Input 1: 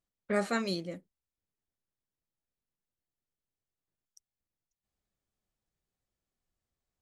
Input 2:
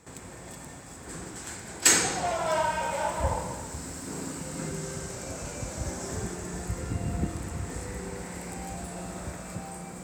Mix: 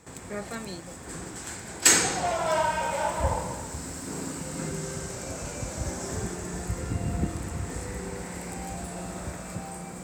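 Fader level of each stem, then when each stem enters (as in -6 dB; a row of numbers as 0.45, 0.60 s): -6.0, +1.5 dB; 0.00, 0.00 s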